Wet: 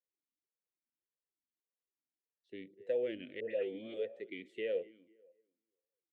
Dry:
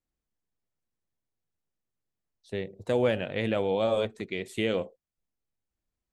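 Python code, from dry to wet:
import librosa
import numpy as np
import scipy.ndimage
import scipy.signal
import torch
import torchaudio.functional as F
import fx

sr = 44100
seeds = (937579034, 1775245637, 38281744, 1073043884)

y = fx.dispersion(x, sr, late='highs', ms=121.0, hz=1400.0, at=(3.4, 3.94))
y = fx.echo_tape(y, sr, ms=245, feedback_pct=33, wet_db=-18.5, lp_hz=2000.0, drive_db=14.0, wow_cents=9)
y = fx.vowel_sweep(y, sr, vowels='e-i', hz=1.7)
y = y * 10.0 ** (-2.0 / 20.0)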